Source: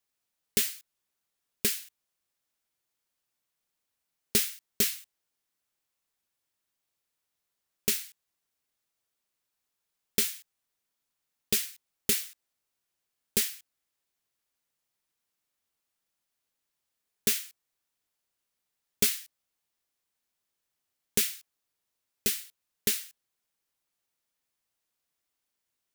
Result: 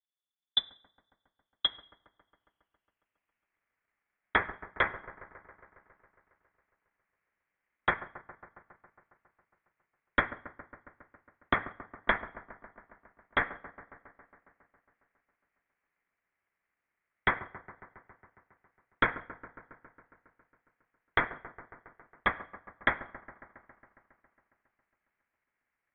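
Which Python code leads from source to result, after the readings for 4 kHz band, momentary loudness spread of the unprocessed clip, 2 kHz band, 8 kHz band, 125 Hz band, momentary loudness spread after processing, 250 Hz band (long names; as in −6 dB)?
−1.5 dB, 15 LU, +9.5 dB, below −40 dB, +0.5 dB, 19 LU, −2.0 dB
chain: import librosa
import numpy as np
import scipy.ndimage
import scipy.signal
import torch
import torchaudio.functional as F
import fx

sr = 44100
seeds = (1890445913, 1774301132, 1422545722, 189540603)

p1 = fx.high_shelf_res(x, sr, hz=1500.0, db=7.5, q=1.5)
p2 = fx.level_steps(p1, sr, step_db=11)
p3 = p1 + F.gain(torch.from_numpy(p2), -2.0).numpy()
p4 = fx.filter_sweep_bandpass(p3, sr, from_hz=200.0, to_hz=1500.0, start_s=0.72, end_s=3.62, q=2.2)
p5 = fx.transient(p4, sr, attack_db=8, sustain_db=-6)
p6 = p5 + fx.echo_wet_highpass(p5, sr, ms=137, feedback_pct=74, hz=2700.0, wet_db=-13.5, dry=0)
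p7 = fx.rev_double_slope(p6, sr, seeds[0], early_s=0.54, late_s=1.9, knee_db=-28, drr_db=15.5)
y = fx.freq_invert(p7, sr, carrier_hz=3700)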